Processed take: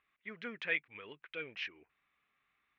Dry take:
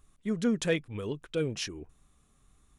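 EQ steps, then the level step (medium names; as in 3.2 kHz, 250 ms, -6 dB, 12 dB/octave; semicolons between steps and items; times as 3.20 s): band-pass filter 2.2 kHz, Q 3; distance through air 300 m; +8.0 dB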